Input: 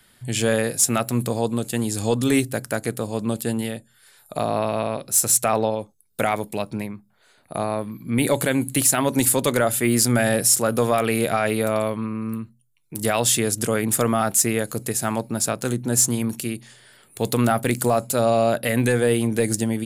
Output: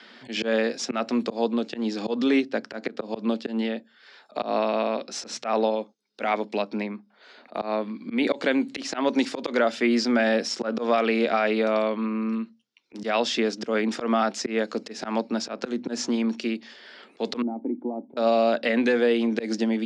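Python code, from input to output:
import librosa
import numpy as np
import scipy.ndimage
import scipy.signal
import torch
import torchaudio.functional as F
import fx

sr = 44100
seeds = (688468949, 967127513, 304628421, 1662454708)

y = fx.high_shelf(x, sr, hz=6300.0, db=-10.0, at=(1.44, 4.33))
y = fx.formant_cascade(y, sr, vowel='u', at=(17.42, 18.17))
y = scipy.signal.sosfilt(scipy.signal.cheby1(4, 1.0, [220.0, 5400.0], 'bandpass', fs=sr, output='sos'), y)
y = fx.auto_swell(y, sr, attack_ms=135.0)
y = fx.band_squash(y, sr, depth_pct=40)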